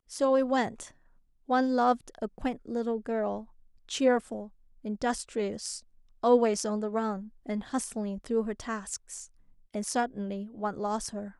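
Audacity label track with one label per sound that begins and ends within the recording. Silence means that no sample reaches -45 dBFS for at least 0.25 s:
1.490000	3.440000	sound
3.890000	4.480000	sound
4.850000	5.800000	sound
6.230000	9.260000	sound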